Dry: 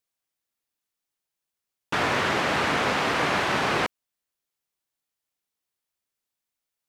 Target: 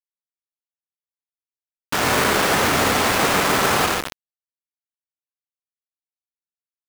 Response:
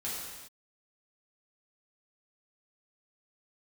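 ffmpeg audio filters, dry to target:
-filter_complex "[0:a]aemphasis=mode=reproduction:type=50kf,asplit=2[a][b];[b]adelay=142,lowpass=f=1.9k:p=1,volume=-4dB,asplit=2[c][d];[d]adelay=142,lowpass=f=1.9k:p=1,volume=0.3,asplit=2[e][f];[f]adelay=142,lowpass=f=1.9k:p=1,volume=0.3,asplit=2[g][h];[h]adelay=142,lowpass=f=1.9k:p=1,volume=0.3[i];[a][c][e][g][i]amix=inputs=5:normalize=0,asplit=2[j][k];[1:a]atrim=start_sample=2205,adelay=69[l];[k][l]afir=irnorm=-1:irlink=0,volume=-7.5dB[m];[j][m]amix=inputs=2:normalize=0,acrusher=bits=3:mix=0:aa=0.000001,volume=3dB"

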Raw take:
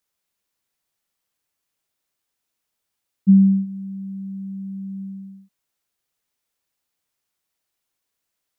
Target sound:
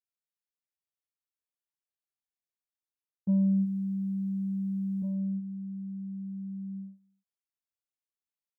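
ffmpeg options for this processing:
-filter_complex "[0:a]acontrast=57,agate=range=-22dB:threshold=-27dB:ratio=16:detection=peak,areverse,acompressor=threshold=-18dB:ratio=5,areverse,asplit=2[a][b];[b]adelay=1749,volume=-6dB,highshelf=f=4k:g=-39.4[c];[a][c]amix=inputs=2:normalize=0,volume=-6.5dB"

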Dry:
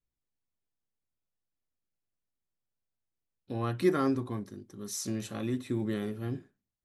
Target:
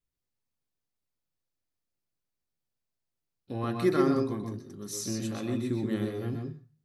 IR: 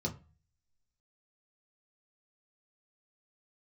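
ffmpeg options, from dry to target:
-filter_complex "[0:a]asplit=2[a][b];[1:a]atrim=start_sample=2205,lowshelf=f=420:g=-11.5,adelay=125[c];[b][c]afir=irnorm=-1:irlink=0,volume=-4.5dB[d];[a][d]amix=inputs=2:normalize=0"

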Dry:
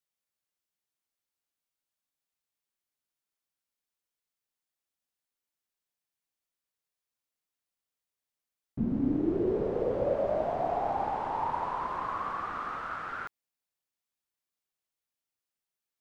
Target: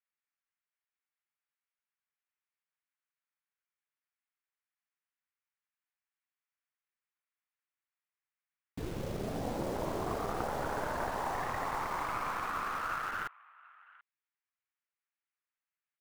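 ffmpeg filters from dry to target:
-filter_complex "[0:a]lowpass=f=2.3k:w=0.5412,lowpass=f=2.3k:w=1.3066,tiltshelf=f=1.1k:g=-3.5,aeval=exprs='0.119*(cos(1*acos(clip(val(0)/0.119,-1,1)))-cos(1*PI/2))+0.0473*(cos(2*acos(clip(val(0)/0.119,-1,1)))-cos(2*PI/2))':c=same,afftfilt=real='re*lt(hypot(re,im),0.141)':imag='im*lt(hypot(re,im),0.141)':win_size=1024:overlap=0.75,acrossover=split=840[a][b];[a]acrusher=bits=7:mix=0:aa=0.000001[c];[b]aecho=1:1:735:0.0944[d];[c][d]amix=inputs=2:normalize=0,volume=1dB"

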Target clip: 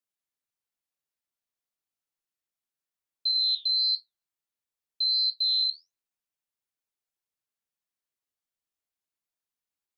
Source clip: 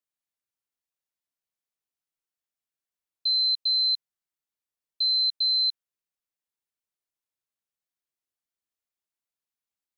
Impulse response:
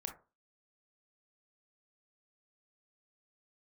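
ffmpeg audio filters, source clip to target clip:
-filter_complex "[0:a]flanger=delay=8.2:depth=6.7:regen=70:speed=1.5:shape=sinusoidal,asplit=2[a][b];[1:a]atrim=start_sample=2205[c];[b][c]afir=irnorm=-1:irlink=0,volume=-3dB[d];[a][d]amix=inputs=2:normalize=0"

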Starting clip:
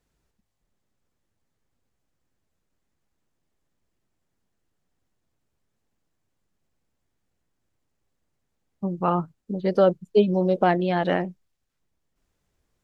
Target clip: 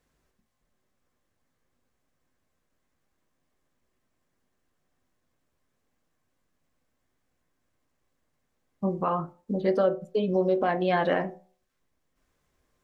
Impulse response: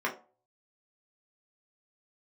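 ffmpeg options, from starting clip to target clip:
-filter_complex "[0:a]alimiter=limit=-18dB:level=0:latency=1:release=171,asplit=2[a][b];[1:a]atrim=start_sample=2205[c];[b][c]afir=irnorm=-1:irlink=0,volume=-10dB[d];[a][d]amix=inputs=2:normalize=0"

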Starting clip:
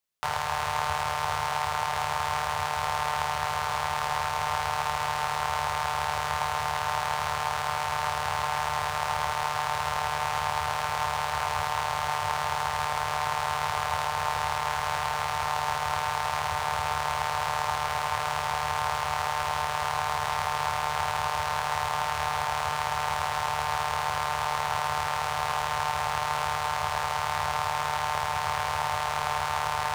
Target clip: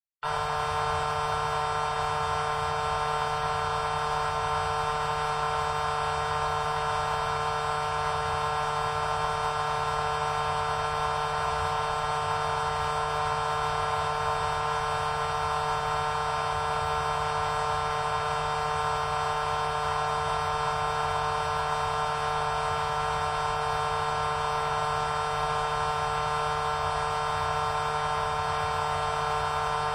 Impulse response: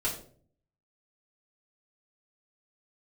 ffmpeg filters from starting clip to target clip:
-filter_complex "[1:a]atrim=start_sample=2205[a];[0:a][a]afir=irnorm=-1:irlink=0,afftdn=nr=23:nf=-39,volume=-5dB"

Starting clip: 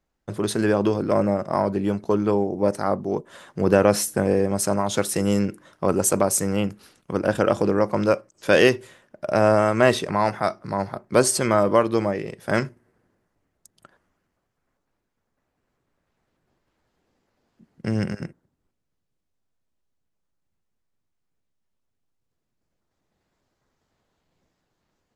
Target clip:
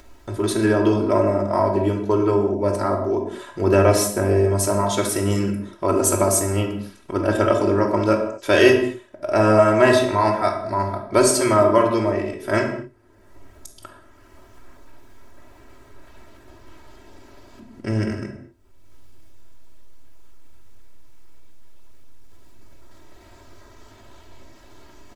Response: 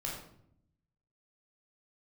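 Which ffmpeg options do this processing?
-filter_complex "[0:a]aecho=1:1:3.1:0.81,acompressor=mode=upward:threshold=-30dB:ratio=2.5,asplit=2[a][b];[1:a]atrim=start_sample=2205,afade=t=out:st=0.24:d=0.01,atrim=end_sample=11025,asetrate=32634,aresample=44100[c];[b][c]afir=irnorm=-1:irlink=0,volume=-2dB[d];[a][d]amix=inputs=2:normalize=0,volume=-5dB"

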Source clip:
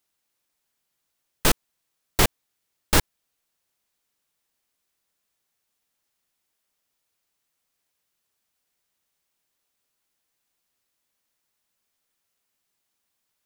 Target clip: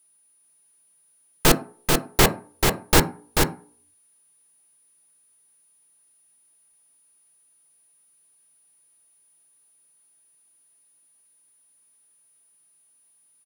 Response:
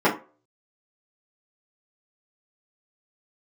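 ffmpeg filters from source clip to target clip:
-filter_complex "[0:a]aecho=1:1:438:0.631,asplit=2[a][b];[1:a]atrim=start_sample=2205,asetrate=34839,aresample=44100[c];[b][c]afir=irnorm=-1:irlink=0,volume=-25.5dB[d];[a][d]amix=inputs=2:normalize=0,aeval=exprs='val(0)+0.000891*sin(2*PI*9700*n/s)':c=same,volume=2dB"

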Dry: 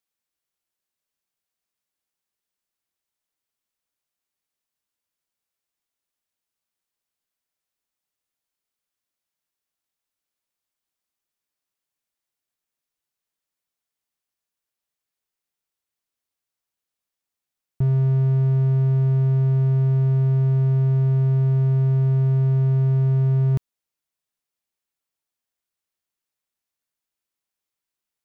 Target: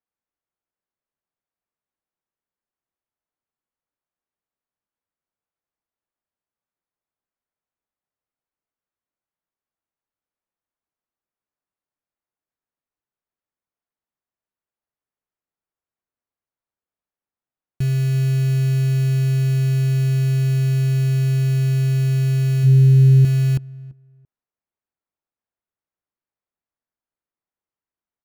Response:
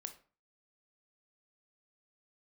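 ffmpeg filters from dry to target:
-filter_complex "[0:a]lowpass=1.5k,acrusher=bits=4:mode=log:mix=0:aa=0.000001,asettb=1/sr,asplit=3[a][b][c];[a]atrim=end=22.634[d];[b]atrim=start=22.63:end=23.25,asetpts=PTS-STARTPTS,afade=t=in:d=0.004:c=qsin,afade=t=out:st=0.616:d=0.004:c=qsin,equalizer=f=130:w=6.9:g=10.5[e];[c]atrim=start=23.246[f];[d][e]acrossfade=d=0.004:c1=hsin:c2=qsin[g];[g][f]acrossfade=d=0.004:c1=qsin:c2=hsin,asoftclip=type=tanh:threshold=-7dB,asplit=2[h][i];[i]adelay=338,lowpass=f=1k:p=1,volume=-21dB,asplit=2[j][k];[k]adelay=338,lowpass=f=1k:p=1,volume=0.27[l];[h][j][l]amix=inputs=3:normalize=0"

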